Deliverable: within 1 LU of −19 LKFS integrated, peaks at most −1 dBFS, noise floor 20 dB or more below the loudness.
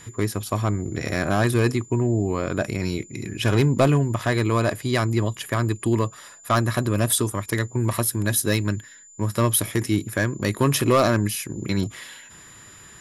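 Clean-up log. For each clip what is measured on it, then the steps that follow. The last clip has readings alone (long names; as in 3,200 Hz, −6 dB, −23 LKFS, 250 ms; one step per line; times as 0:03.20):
share of clipped samples 0.4%; peaks flattened at −11.0 dBFS; interfering tone 7,100 Hz; level of the tone −46 dBFS; integrated loudness −23.0 LKFS; sample peak −11.0 dBFS; target loudness −19.0 LKFS
→ clipped peaks rebuilt −11 dBFS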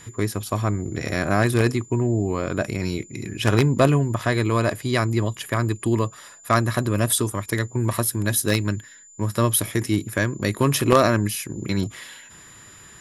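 share of clipped samples 0.0%; interfering tone 7,100 Hz; level of the tone −46 dBFS
→ notch filter 7,100 Hz, Q 30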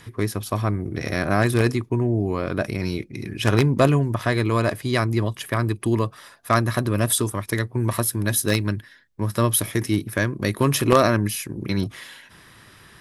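interfering tone none found; integrated loudness −22.5 LKFS; sample peak −2.0 dBFS; target loudness −19.0 LKFS
→ level +3.5 dB
brickwall limiter −1 dBFS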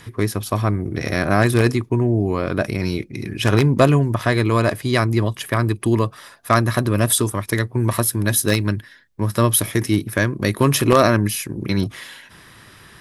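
integrated loudness −19.5 LKFS; sample peak −1.0 dBFS; background noise floor −47 dBFS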